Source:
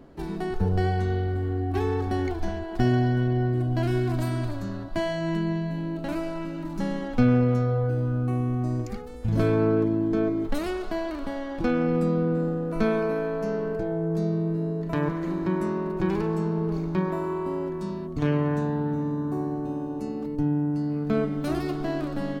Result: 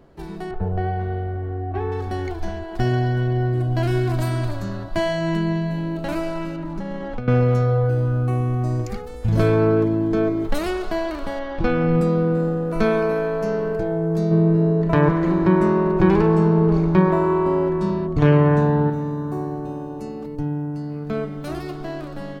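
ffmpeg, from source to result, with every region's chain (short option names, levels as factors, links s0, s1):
-filter_complex "[0:a]asettb=1/sr,asplit=3[s0][s1][s2];[s0]atrim=end=0.514[s3];[s1]atrim=start=0.51:end=1.92,asetpts=PTS-STARTPTS,afade=t=in:d=0.004:c=qsin,afade=t=out:st=1.406:d=0.004:c=qsin,lowpass=2100,equalizer=f=650:w=5.1:g=10[s4];[s2]atrim=start=1.916[s5];[s3][s4]acrossfade=d=0.004:c1=hsin:c2=qsin[s6];[s6][s5]acrossfade=d=0.004:c1=qsin:c2=hsin,asettb=1/sr,asplit=3[s7][s8][s9];[s7]atrim=end=6.564[s10];[s8]atrim=start=6.56:end=7.28,asetpts=PTS-STARTPTS,afade=t=in:d=0.004:c=qsin,afade=t=out:st=0.716:d=0.004:c=qsin,lowpass=f=2000:p=1,acompressor=threshold=0.0398:ratio=8:attack=3.2:release=140:knee=1:detection=peak[s11];[s9]atrim=start=7.276[s12];[s10][s11]acrossfade=d=0.004:c1=hsin:c2=qsin[s13];[s13][s12]acrossfade=d=0.004:c1=qsin:c2=hsin,asettb=1/sr,asplit=3[s14][s15][s16];[s14]atrim=end=11.394[s17];[s15]atrim=start=11.39:end=12.01,asetpts=PTS-STARTPTS,afade=t=in:d=0.004:c=qsin,afade=t=out:st=0.616:d=0.004:c=qsin,lowpass=4400,asubboost=boost=8:cutoff=230[s18];[s16]atrim=start=12.006[s19];[s17][s18]acrossfade=d=0.004:c1=hsin:c2=qsin[s20];[s20][s19]acrossfade=d=0.004:c1=qsin:c2=hsin,asettb=1/sr,asplit=3[s21][s22][s23];[s21]atrim=end=14.314[s24];[s22]atrim=start=14.31:end=18.9,asetpts=PTS-STARTPTS,afade=t=in:d=0.004:c=qsin,afade=t=out:st=4.586:d=0.004:c=qsin,lowpass=f=2400:p=1,acontrast=35[s25];[s23]atrim=start=18.896[s26];[s24][s25]acrossfade=d=0.004:c1=hsin:c2=qsin[s27];[s27][s26]acrossfade=d=0.004:c1=qsin:c2=hsin,equalizer=f=260:w=3.6:g=-8.5,dynaudnorm=f=480:g=13:m=2.11"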